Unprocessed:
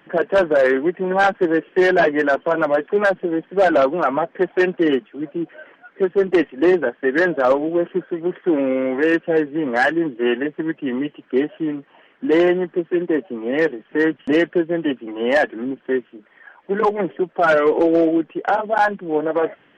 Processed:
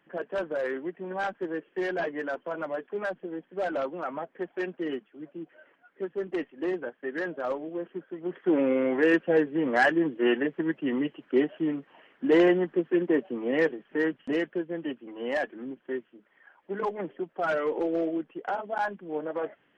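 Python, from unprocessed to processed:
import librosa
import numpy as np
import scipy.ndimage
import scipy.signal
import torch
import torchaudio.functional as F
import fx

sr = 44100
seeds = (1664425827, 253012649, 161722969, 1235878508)

y = fx.gain(x, sr, db=fx.line((8.07, -15.0), (8.56, -5.0), (13.42, -5.0), (14.52, -12.5)))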